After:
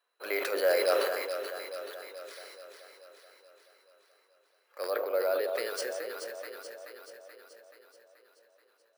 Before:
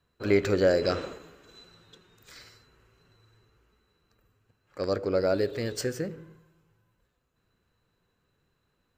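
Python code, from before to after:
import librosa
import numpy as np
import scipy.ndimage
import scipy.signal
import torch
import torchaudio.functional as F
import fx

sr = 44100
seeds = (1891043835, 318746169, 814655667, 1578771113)

y = fx.cheby1_lowpass(x, sr, hz=3700.0, order=3, at=(4.9, 5.44))
y = np.repeat(scipy.signal.resample_poly(y, 1, 3), 3)[:len(y)]
y = scipy.signal.sosfilt(scipy.signal.butter(4, 530.0, 'highpass', fs=sr, output='sos'), y)
y = fx.echo_alternate(y, sr, ms=215, hz=1100.0, feedback_pct=76, wet_db=-5.5)
y = fx.sustainer(y, sr, db_per_s=35.0)
y = y * 10.0 ** (-1.5 / 20.0)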